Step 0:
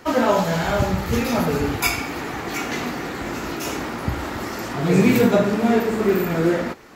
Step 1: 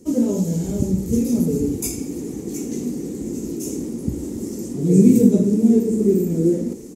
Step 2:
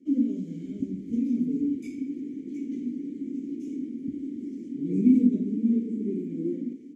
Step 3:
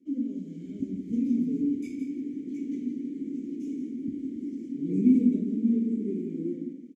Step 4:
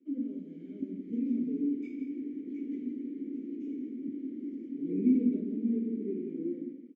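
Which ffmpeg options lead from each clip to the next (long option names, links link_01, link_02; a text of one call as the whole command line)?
ffmpeg -i in.wav -af "firequalizer=gain_entry='entry(120,0);entry(200,9);entry(460,2);entry(650,-16);entry(1400,-28);entry(2100,-20);entry(4200,-13);entry(6300,4);entry(9000,9);entry(15000,-5)':delay=0.05:min_phase=1,areverse,acompressor=mode=upward:threshold=-22dB:ratio=2.5,areverse,volume=-3dB" out.wav
ffmpeg -i in.wav -filter_complex "[0:a]asplit=3[link_01][link_02][link_03];[link_01]bandpass=frequency=270:width_type=q:width=8,volume=0dB[link_04];[link_02]bandpass=frequency=2290:width_type=q:width=8,volume=-6dB[link_05];[link_03]bandpass=frequency=3010:width_type=q:width=8,volume=-9dB[link_06];[link_04][link_05][link_06]amix=inputs=3:normalize=0,highshelf=frequency=5500:gain=-7.5" out.wav
ffmpeg -i in.wav -filter_complex "[0:a]dynaudnorm=framelen=150:gausssize=9:maxgain=6dB,asplit=2[link_01][link_02];[link_02]aecho=0:1:168:0.376[link_03];[link_01][link_03]amix=inputs=2:normalize=0,volume=-6.5dB" out.wav
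ffmpeg -i in.wav -af "highpass=300,lowpass=2100" out.wav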